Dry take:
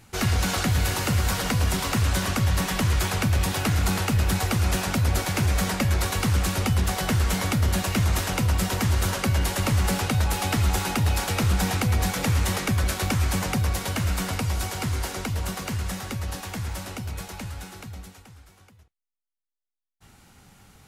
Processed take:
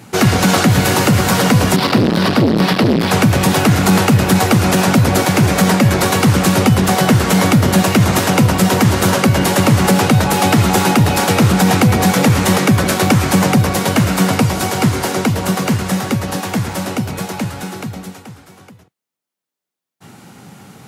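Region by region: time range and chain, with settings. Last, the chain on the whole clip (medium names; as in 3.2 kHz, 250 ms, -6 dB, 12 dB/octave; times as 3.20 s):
1.76–3.11 s: resonant high shelf 5.6 kHz -6 dB, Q 3 + transformer saturation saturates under 460 Hz
whole clip: high-pass 130 Hz 24 dB/octave; tilt shelf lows +4 dB, about 920 Hz; loudness maximiser +15.5 dB; trim -1 dB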